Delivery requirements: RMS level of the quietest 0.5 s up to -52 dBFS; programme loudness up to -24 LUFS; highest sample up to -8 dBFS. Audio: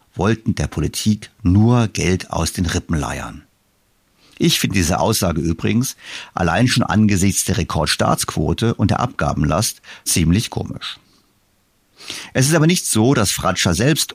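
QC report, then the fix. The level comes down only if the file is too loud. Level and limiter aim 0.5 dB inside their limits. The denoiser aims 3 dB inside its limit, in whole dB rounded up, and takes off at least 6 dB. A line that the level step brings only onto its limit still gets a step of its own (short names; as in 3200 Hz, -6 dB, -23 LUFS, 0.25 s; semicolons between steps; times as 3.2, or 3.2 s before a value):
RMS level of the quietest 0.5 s -61 dBFS: OK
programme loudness -17.5 LUFS: fail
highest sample -5.0 dBFS: fail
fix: gain -7 dB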